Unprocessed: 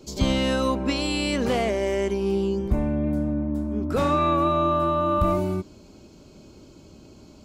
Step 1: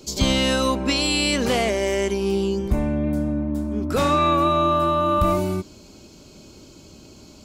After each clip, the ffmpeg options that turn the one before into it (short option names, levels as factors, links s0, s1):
-af "highshelf=f=2300:g=8.5,volume=1.19"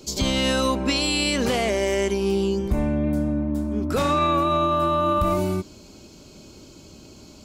-af "alimiter=limit=0.237:level=0:latency=1:release=70"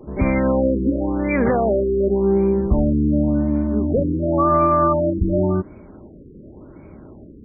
-af "afftfilt=real='re*lt(b*sr/1024,510*pow(2500/510,0.5+0.5*sin(2*PI*0.91*pts/sr)))':imag='im*lt(b*sr/1024,510*pow(2500/510,0.5+0.5*sin(2*PI*0.91*pts/sr)))':win_size=1024:overlap=0.75,volume=1.88"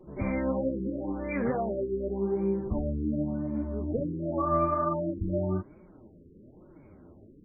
-af "flanger=delay=5.4:depth=6.6:regen=24:speed=1.2:shape=sinusoidal,volume=0.398"